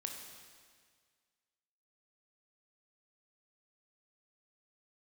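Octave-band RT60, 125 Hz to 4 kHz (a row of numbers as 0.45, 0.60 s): 1.9, 1.8, 1.8, 1.8, 1.8, 1.8 s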